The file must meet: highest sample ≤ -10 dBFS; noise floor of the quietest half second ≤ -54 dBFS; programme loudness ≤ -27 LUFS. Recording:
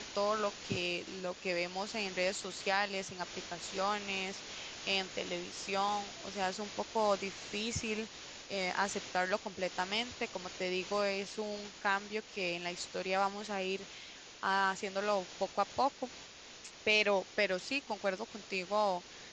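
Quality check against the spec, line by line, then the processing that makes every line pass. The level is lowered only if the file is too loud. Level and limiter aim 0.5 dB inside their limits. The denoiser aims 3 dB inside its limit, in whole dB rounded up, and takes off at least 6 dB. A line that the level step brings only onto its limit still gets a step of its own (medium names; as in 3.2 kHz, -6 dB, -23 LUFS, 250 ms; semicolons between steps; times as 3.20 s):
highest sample -17.0 dBFS: pass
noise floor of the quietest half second -52 dBFS: fail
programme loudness -35.5 LUFS: pass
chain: noise reduction 6 dB, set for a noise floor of -52 dBFS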